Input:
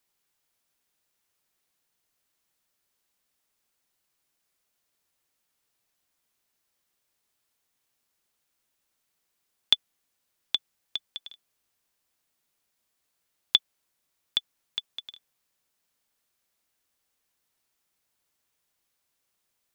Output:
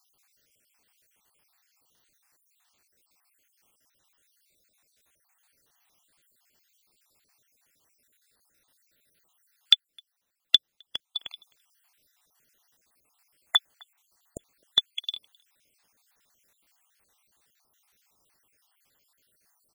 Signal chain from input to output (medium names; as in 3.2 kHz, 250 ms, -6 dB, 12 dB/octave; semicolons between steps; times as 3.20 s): random holes in the spectrogram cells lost 62%; speakerphone echo 260 ms, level -27 dB; loudness maximiser +13.5 dB; 9.74–11.19 s: upward expansion 1.5:1, over -36 dBFS; trim -1 dB